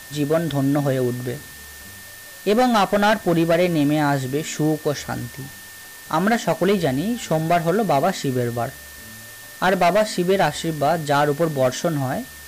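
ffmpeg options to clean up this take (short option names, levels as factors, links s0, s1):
-af "bandreject=f=1800:w=30,afwtdn=0.01"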